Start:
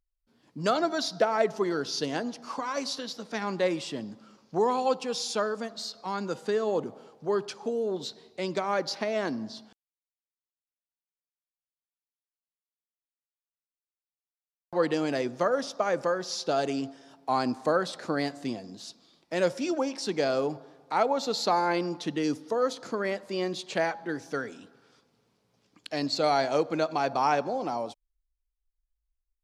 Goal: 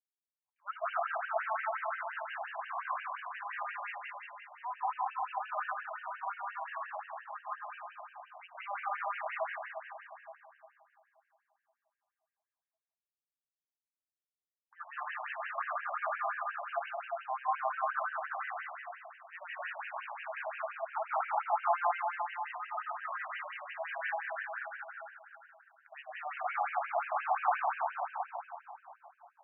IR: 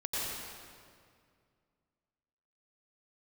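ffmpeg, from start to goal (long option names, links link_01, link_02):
-filter_complex "[0:a]bandreject=frequency=610:width=13,agate=range=-33dB:threshold=-49dB:ratio=3:detection=peak,acrossover=split=520[link_01][link_02];[link_01]acompressor=threshold=-38dB:ratio=12[link_03];[link_03][link_02]amix=inputs=2:normalize=0[link_04];[1:a]atrim=start_sample=2205,asetrate=28665,aresample=44100[link_05];[link_04][link_05]afir=irnorm=-1:irlink=0,afftfilt=real='re*between(b*sr/1024,820*pow(2200/820,0.5+0.5*sin(2*PI*5.7*pts/sr))/1.41,820*pow(2200/820,0.5+0.5*sin(2*PI*5.7*pts/sr))*1.41)':imag='im*between(b*sr/1024,820*pow(2200/820,0.5+0.5*sin(2*PI*5.7*pts/sr))/1.41,820*pow(2200/820,0.5+0.5*sin(2*PI*5.7*pts/sr))*1.41)':win_size=1024:overlap=0.75,volume=-7dB"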